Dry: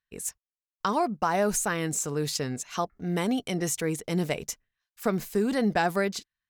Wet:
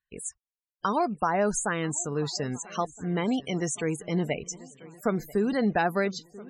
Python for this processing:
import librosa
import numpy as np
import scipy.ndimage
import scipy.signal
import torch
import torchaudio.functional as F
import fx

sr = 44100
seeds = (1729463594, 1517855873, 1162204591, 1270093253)

y = fx.echo_swing(x, sr, ms=1319, ratio=3, feedback_pct=42, wet_db=-20)
y = fx.spec_topn(y, sr, count=64)